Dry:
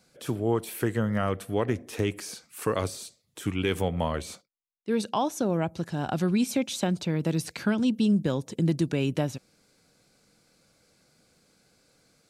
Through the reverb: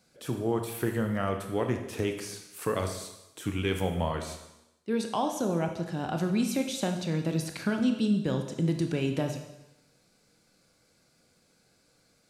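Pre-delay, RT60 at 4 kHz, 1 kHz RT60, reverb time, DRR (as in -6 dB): 21 ms, 0.95 s, 0.95 s, 0.90 s, 4.5 dB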